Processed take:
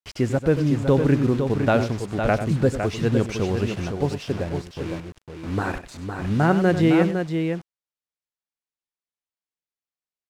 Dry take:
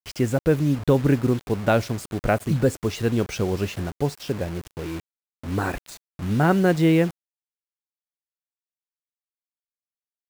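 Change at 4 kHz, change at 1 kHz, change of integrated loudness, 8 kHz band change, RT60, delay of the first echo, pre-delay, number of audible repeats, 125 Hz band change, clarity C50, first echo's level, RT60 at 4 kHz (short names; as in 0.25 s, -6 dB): 0.0 dB, +1.0 dB, +0.5 dB, -3.5 dB, none, 96 ms, none, 2, +1.0 dB, none, -11.5 dB, none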